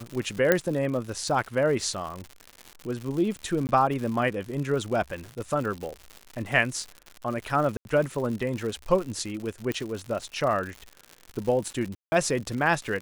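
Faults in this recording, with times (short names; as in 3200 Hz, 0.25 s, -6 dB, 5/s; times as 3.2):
crackle 140/s -32 dBFS
0.52 pop -6 dBFS
3.67–3.69 gap 19 ms
7.77–7.85 gap 81 ms
9.72 pop -16 dBFS
11.95–12.12 gap 0.17 s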